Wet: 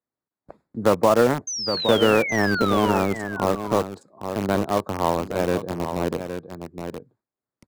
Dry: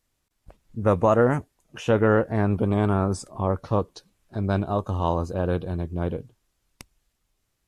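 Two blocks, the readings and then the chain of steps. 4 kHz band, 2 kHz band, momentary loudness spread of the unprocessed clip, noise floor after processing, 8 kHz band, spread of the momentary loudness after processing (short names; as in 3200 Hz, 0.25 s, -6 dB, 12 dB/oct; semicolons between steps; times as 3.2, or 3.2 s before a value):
+15.5 dB, +7.5 dB, 11 LU, under -85 dBFS, +12.0 dB, 17 LU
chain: Wiener smoothing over 15 samples; HPF 190 Hz 12 dB/oct; gate with hold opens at -52 dBFS; in parallel at -5.5 dB: bit-crush 4-bit; on the sum: painted sound fall, 1.47–2.99, 830–6400 Hz -27 dBFS; on a send: echo 0.816 s -11.5 dB; on the sum: three-band squash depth 40%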